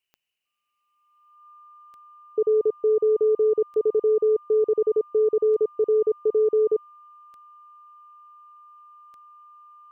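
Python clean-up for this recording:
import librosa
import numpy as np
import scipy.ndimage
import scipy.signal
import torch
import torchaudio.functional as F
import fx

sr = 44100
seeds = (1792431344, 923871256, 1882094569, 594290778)

y = fx.fix_declick_ar(x, sr, threshold=10.0)
y = fx.notch(y, sr, hz=1200.0, q=30.0)
y = fx.noise_reduce(y, sr, print_start_s=0.0, print_end_s=0.5, reduce_db=6.0)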